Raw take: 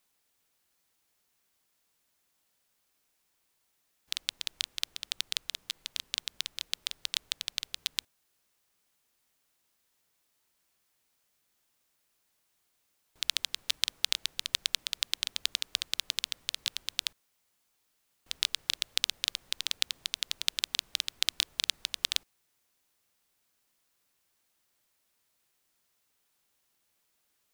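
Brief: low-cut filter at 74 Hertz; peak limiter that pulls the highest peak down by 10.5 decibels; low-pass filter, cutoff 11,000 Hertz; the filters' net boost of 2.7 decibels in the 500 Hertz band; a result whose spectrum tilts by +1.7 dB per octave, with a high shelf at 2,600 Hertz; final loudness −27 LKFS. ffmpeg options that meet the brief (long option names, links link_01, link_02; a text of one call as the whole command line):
ffmpeg -i in.wav -af "highpass=74,lowpass=11000,equalizer=frequency=500:width_type=o:gain=3,highshelf=frequency=2600:gain=8,volume=5.5dB,alimiter=limit=-2dB:level=0:latency=1" out.wav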